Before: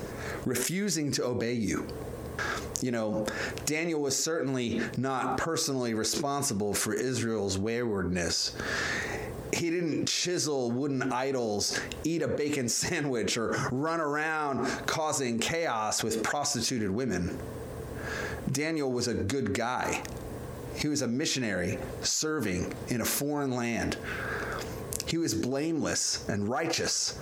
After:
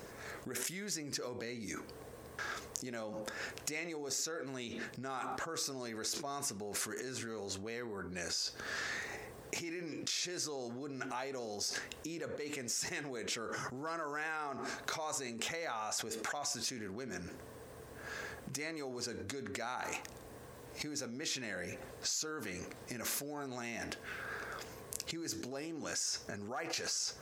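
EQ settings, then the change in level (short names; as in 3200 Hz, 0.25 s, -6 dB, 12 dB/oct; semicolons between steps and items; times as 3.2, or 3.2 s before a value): low shelf 490 Hz -9 dB; -7.5 dB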